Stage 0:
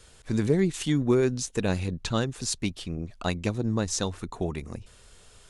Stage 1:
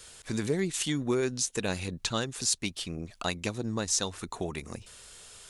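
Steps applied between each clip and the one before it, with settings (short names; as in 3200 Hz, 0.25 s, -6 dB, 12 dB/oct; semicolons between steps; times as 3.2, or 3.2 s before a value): tilt +2 dB/oct; in parallel at +2 dB: compressor, threshold -35 dBFS, peak gain reduction 14 dB; on the sum: gain -5 dB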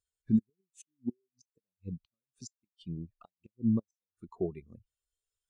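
flipped gate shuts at -20 dBFS, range -28 dB; spectral expander 2.5:1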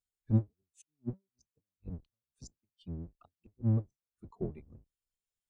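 octaver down 1 oct, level +3 dB; gain -6 dB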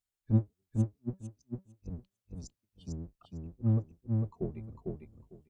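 feedback echo 0.451 s, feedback 17%, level -3 dB; gain +1 dB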